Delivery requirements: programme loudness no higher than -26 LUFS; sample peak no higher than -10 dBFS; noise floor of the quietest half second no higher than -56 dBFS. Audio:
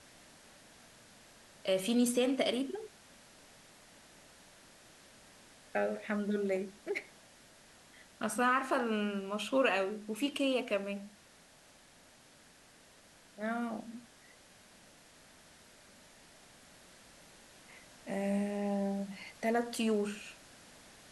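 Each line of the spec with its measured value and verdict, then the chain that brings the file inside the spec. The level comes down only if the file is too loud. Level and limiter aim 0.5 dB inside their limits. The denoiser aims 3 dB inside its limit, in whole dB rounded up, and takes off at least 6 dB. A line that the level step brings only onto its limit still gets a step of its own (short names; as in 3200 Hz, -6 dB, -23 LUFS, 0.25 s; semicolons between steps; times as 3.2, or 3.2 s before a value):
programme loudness -34.5 LUFS: OK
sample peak -17.5 dBFS: OK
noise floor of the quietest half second -61 dBFS: OK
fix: none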